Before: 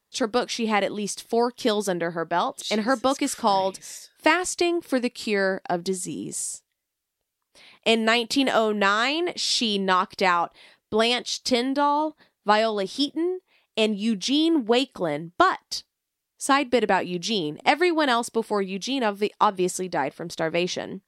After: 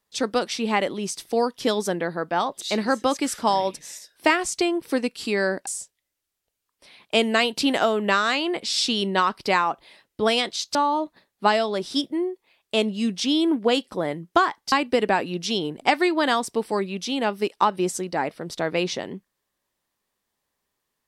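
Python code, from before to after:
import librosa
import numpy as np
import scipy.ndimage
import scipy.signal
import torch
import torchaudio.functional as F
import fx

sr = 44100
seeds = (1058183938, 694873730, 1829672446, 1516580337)

y = fx.edit(x, sr, fx.cut(start_s=5.67, length_s=0.73),
    fx.cut(start_s=11.48, length_s=0.31),
    fx.cut(start_s=15.76, length_s=0.76), tone=tone)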